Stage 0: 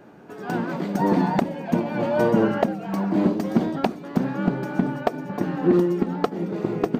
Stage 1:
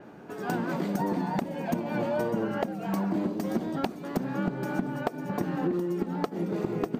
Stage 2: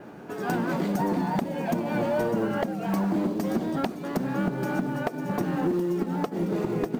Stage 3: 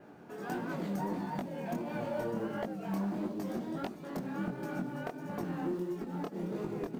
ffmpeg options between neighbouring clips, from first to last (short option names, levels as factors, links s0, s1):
-af "acompressor=threshold=0.0562:ratio=10,adynamicequalizer=threshold=0.00112:dfrequency=6500:dqfactor=0.7:tfrequency=6500:tqfactor=0.7:attack=5:release=100:ratio=0.375:range=3.5:mode=boostabove:tftype=highshelf"
-filter_complex "[0:a]asplit=2[s0][s1];[s1]acrusher=bits=4:mode=log:mix=0:aa=0.000001,volume=0.422[s2];[s0][s2]amix=inputs=2:normalize=0,asoftclip=type=tanh:threshold=0.126,volume=1.12"
-af "flanger=delay=18.5:depth=7.7:speed=1.5,volume=0.447"